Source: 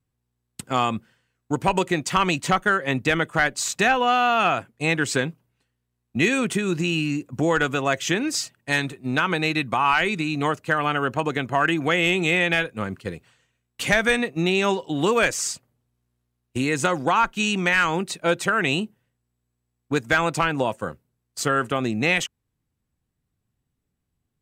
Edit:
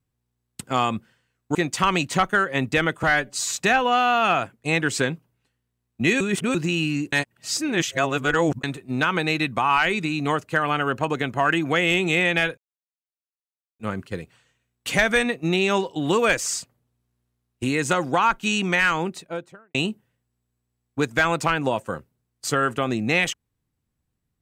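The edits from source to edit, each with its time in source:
0:01.55–0:01.88: remove
0:03.36–0:03.71: time-stretch 1.5×
0:06.36–0:06.70: reverse
0:07.28–0:08.79: reverse
0:12.73: splice in silence 1.22 s
0:17.74–0:18.68: fade out and dull

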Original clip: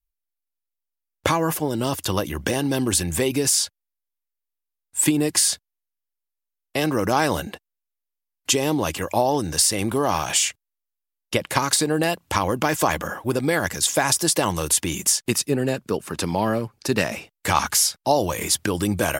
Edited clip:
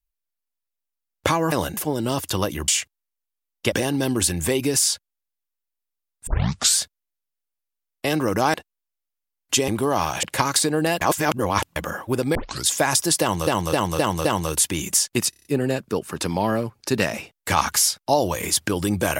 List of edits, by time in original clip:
0:04.98: tape start 0.50 s
0:07.25–0:07.50: move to 0:01.52
0:08.64–0:09.81: remove
0:10.36–0:11.40: move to 0:02.43
0:12.18–0:12.93: reverse
0:13.52: tape start 0.30 s
0:14.38–0:14.64: repeat, 5 plays
0:15.43: stutter 0.03 s, 6 plays

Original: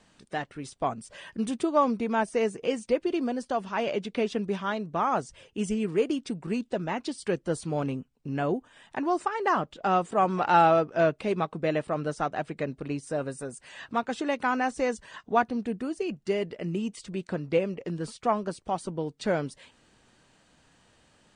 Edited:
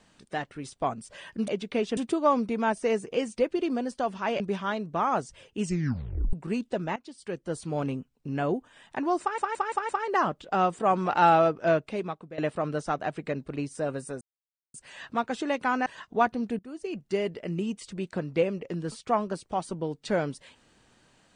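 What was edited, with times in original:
0:03.91–0:04.40: move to 0:01.48
0:05.62: tape stop 0.71 s
0:06.96–0:07.86: fade in, from −17.5 dB
0:09.21: stutter 0.17 s, 5 plays
0:11.01–0:11.70: fade out, to −17 dB
0:13.53: splice in silence 0.53 s
0:14.65–0:15.02: remove
0:15.75–0:16.42: fade in equal-power, from −18.5 dB

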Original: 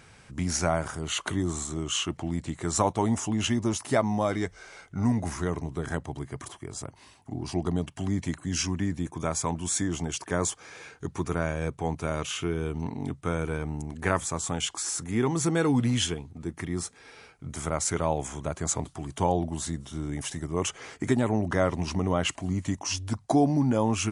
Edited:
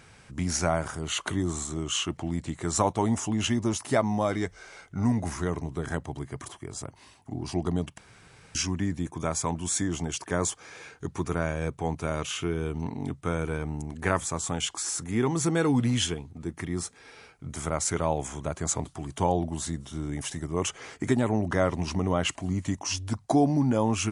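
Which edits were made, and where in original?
0:07.98–0:08.55: fill with room tone

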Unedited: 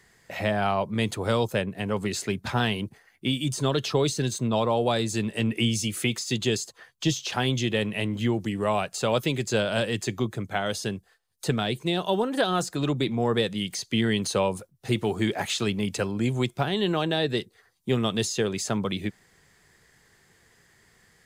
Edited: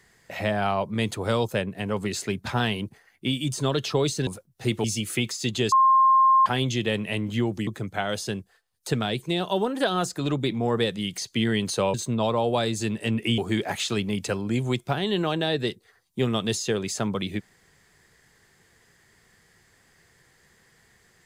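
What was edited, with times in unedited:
0:04.27–0:05.71: swap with 0:14.51–0:15.08
0:06.59–0:07.33: beep over 1,060 Hz −14 dBFS
0:08.54–0:10.24: remove

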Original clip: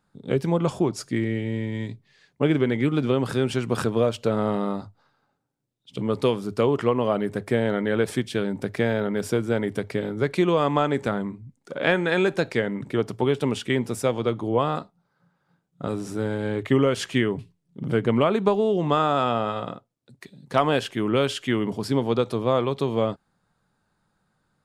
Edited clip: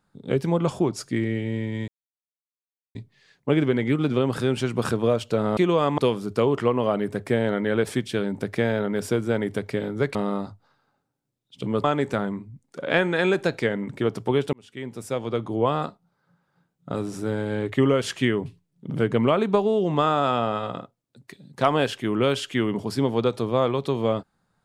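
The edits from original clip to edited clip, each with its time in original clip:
0:01.88: splice in silence 1.07 s
0:04.50–0:06.19: swap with 0:10.36–0:10.77
0:13.46–0:14.50: fade in

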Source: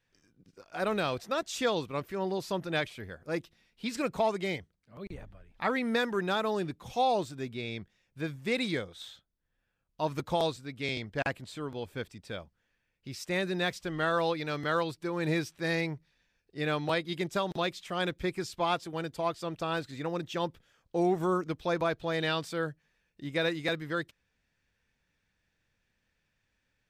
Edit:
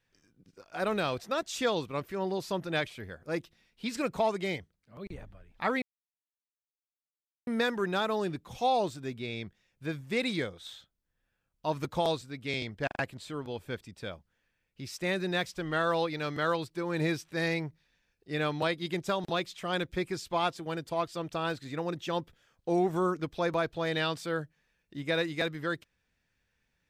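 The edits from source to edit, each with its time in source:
0:05.82: splice in silence 1.65 s
0:11.22: stutter 0.04 s, 3 plays

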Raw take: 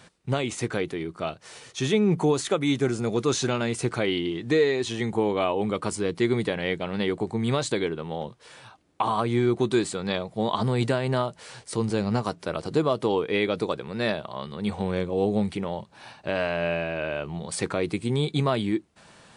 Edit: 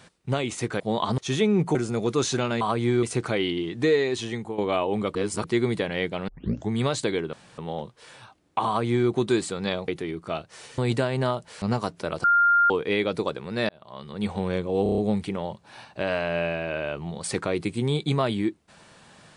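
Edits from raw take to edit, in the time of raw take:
0:00.80–0:01.70: swap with 0:10.31–0:10.69
0:02.27–0:02.85: remove
0:04.86–0:05.26: fade out, to −12.5 dB
0:05.83–0:06.12: reverse
0:06.96: tape start 0.42 s
0:08.01: splice in room tone 0.25 s
0:09.10–0:09.52: duplicate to 0:03.71
0:11.53–0:12.05: remove
0:12.67–0:13.13: beep over 1,400 Hz −15.5 dBFS
0:14.12–0:14.66: fade in
0:15.26: stutter 0.03 s, 6 plays

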